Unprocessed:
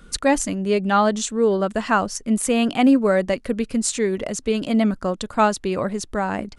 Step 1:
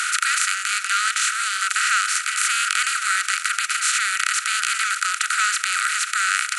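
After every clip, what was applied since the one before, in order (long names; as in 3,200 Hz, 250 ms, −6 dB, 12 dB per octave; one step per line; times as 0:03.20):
compressor on every frequency bin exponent 0.2
Butterworth high-pass 1,300 Hz 96 dB per octave
harmonic and percussive parts rebalanced percussive −3 dB
level −1 dB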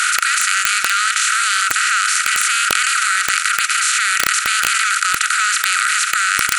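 in parallel at +3 dB: compressor whose output falls as the input rises −26 dBFS, ratio −1
on the sum: wrap-around overflow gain 1.5 dB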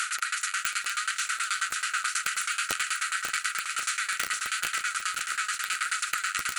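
flanger 0.84 Hz, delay 4.3 ms, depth 9 ms, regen +19%
shaped tremolo saw down 9.3 Hz, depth 95%
feedback echo at a low word length 542 ms, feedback 55%, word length 8 bits, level −7.5 dB
level −6.5 dB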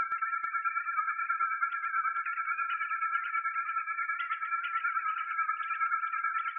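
three sine waves on the formant tracks
multi-tap delay 121/442 ms −10.5/−9 dB
on a send at −12 dB: convolution reverb RT60 1.0 s, pre-delay 3 ms
on the sum: level −3 dB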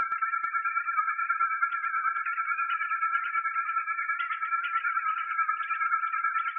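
flanger 1.2 Hz, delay 4.1 ms, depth 1.9 ms, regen −61%
level +7.5 dB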